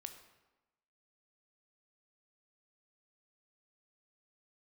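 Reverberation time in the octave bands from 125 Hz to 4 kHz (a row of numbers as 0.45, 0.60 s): 0.95, 1.1, 1.0, 1.1, 0.90, 0.75 s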